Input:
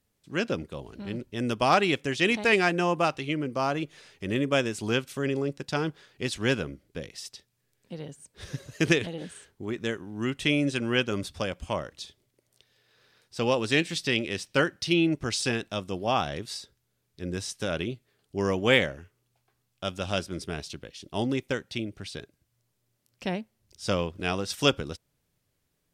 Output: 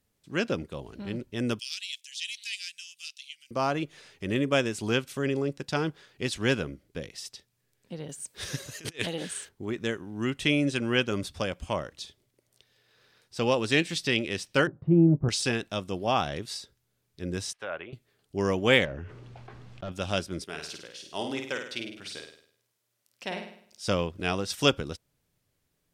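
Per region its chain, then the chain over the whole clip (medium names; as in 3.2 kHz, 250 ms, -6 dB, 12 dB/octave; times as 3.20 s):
1.59–3.51 s: inverse Chebyshev high-pass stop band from 1 kHz, stop band 60 dB + upward compressor, threshold -46 dBFS
8.09–9.49 s: tilt EQ +2 dB/octave + compressor with a negative ratio -33 dBFS, ratio -0.5
14.67–15.29 s: low-pass 1 kHz 24 dB/octave + peaking EQ 140 Hz +12.5 dB 0.69 oct + doubling 18 ms -11.5 dB
17.53–17.93 s: low-pass that closes with the level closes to 2.3 kHz, closed at -26 dBFS + three-band isolator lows -20 dB, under 550 Hz, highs -22 dB, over 2.8 kHz
18.85–19.92 s: overload inside the chain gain 31 dB + tape spacing loss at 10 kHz 28 dB + level flattener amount 70%
20.44–23.88 s: high-pass 670 Hz 6 dB/octave + flutter echo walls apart 8.8 m, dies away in 0.6 s
whole clip: none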